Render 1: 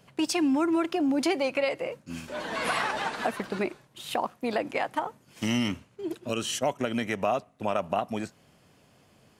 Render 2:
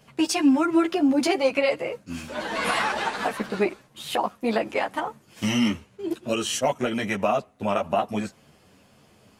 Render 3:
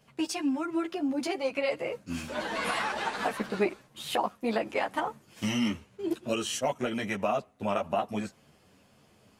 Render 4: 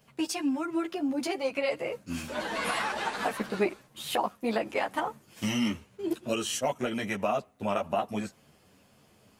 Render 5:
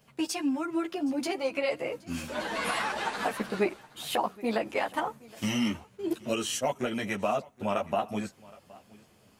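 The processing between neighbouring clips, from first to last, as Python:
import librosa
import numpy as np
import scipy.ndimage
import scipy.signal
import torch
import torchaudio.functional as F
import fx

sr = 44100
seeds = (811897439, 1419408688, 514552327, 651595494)

y1 = fx.ensemble(x, sr)
y1 = F.gain(torch.from_numpy(y1), 7.0).numpy()
y2 = fx.rider(y1, sr, range_db=5, speed_s=0.5)
y2 = F.gain(torch.from_numpy(y2), -6.0).numpy()
y3 = fx.high_shelf(y2, sr, hz=12000.0, db=8.0)
y4 = y3 + 10.0 ** (-22.5 / 20.0) * np.pad(y3, (int(770 * sr / 1000.0), 0))[:len(y3)]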